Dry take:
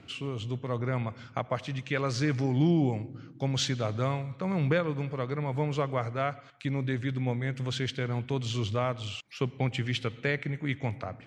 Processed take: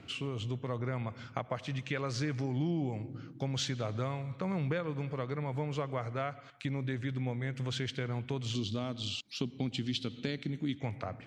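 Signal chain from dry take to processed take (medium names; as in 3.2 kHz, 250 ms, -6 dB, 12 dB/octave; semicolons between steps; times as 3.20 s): 8.55–10.81 s: graphic EQ 125/250/500/1000/2000/4000 Hz -4/+9/-5/-6/-10/+11 dB; compression 2.5:1, threshold -33 dBFS, peak gain reduction 9 dB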